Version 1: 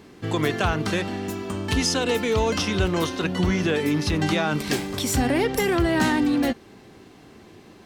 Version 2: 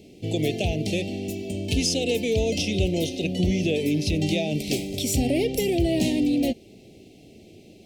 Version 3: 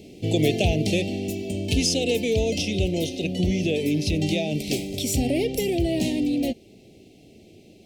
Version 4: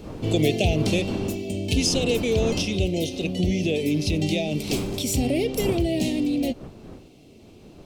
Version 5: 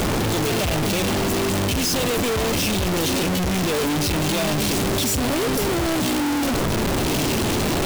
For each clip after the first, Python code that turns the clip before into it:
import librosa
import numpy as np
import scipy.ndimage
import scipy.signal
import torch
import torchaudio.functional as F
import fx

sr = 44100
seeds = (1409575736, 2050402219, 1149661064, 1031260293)

y1 = scipy.signal.sosfilt(scipy.signal.ellip(3, 1.0, 70, [660.0, 2400.0], 'bandstop', fs=sr, output='sos'), x)
y2 = fx.rider(y1, sr, range_db=10, speed_s=2.0)
y3 = fx.dmg_wind(y2, sr, seeds[0], corner_hz=340.0, level_db=-36.0)
y4 = np.sign(y3) * np.sqrt(np.mean(np.square(y3)))
y4 = y4 * librosa.db_to_amplitude(3.0)